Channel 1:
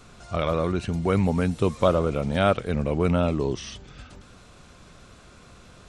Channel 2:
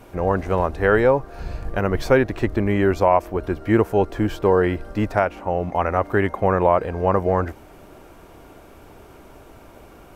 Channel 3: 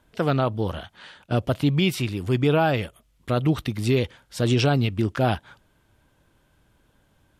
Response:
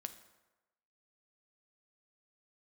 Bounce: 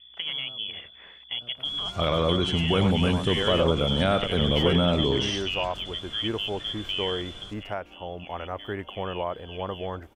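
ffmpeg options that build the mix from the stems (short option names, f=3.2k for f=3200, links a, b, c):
-filter_complex "[0:a]alimiter=limit=-15dB:level=0:latency=1,adelay=1650,volume=1dB,asplit=2[a][b];[b]volume=-9.5dB[c];[1:a]adelay=2450,volume=-10dB,asplit=2[d][e];[e]volume=-3.5dB[f];[2:a]alimiter=limit=-13.5dB:level=0:latency=1,aeval=exprs='val(0)+0.00631*(sin(2*PI*60*n/s)+sin(2*PI*2*60*n/s)/2+sin(2*PI*3*60*n/s)/3+sin(2*PI*4*60*n/s)/4+sin(2*PI*5*60*n/s)/5)':c=same,volume=-5.5dB,asplit=4[g][h][i][j];[h]volume=-22dB[k];[i]volume=-23.5dB[l];[j]apad=whole_len=555766[m];[d][m]sidechaingate=range=-17dB:threshold=-55dB:ratio=16:detection=peak[n];[n][g]amix=inputs=2:normalize=0,lowpass=f=3k:t=q:w=0.5098,lowpass=f=3k:t=q:w=0.6013,lowpass=f=3k:t=q:w=0.9,lowpass=f=3k:t=q:w=2.563,afreqshift=-3500,acompressor=threshold=-31dB:ratio=2,volume=0dB[o];[3:a]atrim=start_sample=2205[p];[k][p]afir=irnorm=-1:irlink=0[q];[c][f][l]amix=inputs=3:normalize=0,aecho=0:1:97:1[r];[a][o][q][r]amix=inputs=4:normalize=0"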